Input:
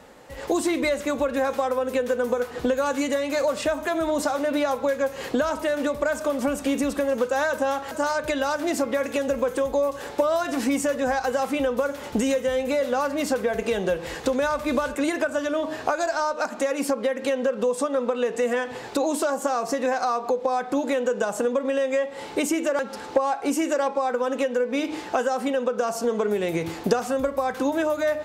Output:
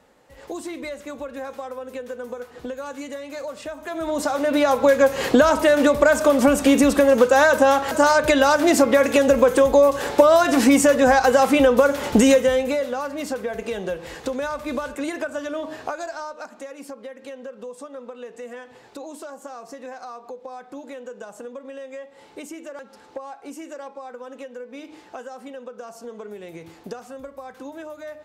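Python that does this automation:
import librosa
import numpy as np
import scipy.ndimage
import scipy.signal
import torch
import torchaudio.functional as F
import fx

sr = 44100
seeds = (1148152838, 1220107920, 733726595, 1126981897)

y = fx.gain(x, sr, db=fx.line((3.76, -9.0), (4.09, -1.0), (4.92, 8.5), (12.34, 8.5), (12.97, -3.5), (15.73, -3.5), (16.73, -13.0)))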